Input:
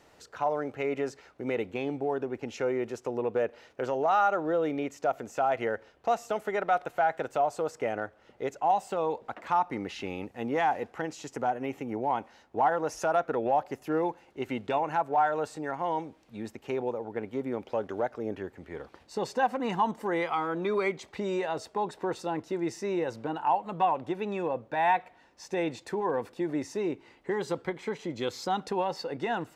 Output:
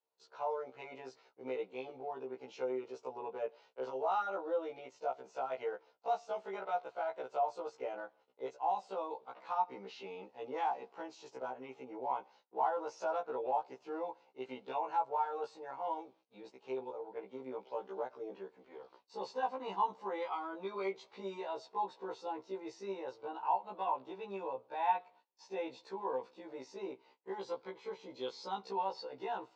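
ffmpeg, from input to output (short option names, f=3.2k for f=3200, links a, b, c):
-af "agate=range=-24dB:threshold=-53dB:ratio=16:detection=peak,highpass=280,equalizer=f=290:t=q:w=4:g=-6,equalizer=f=450:t=q:w=4:g=4,equalizer=f=950:t=q:w=4:g=7,equalizer=f=1.8k:t=q:w=4:g=-9,equalizer=f=4.2k:t=q:w=4:g=4,lowpass=f=5.8k:w=0.5412,lowpass=f=5.8k:w=1.3066,afftfilt=real='re*1.73*eq(mod(b,3),0)':imag='im*1.73*eq(mod(b,3),0)':win_size=2048:overlap=0.75,volume=-8dB"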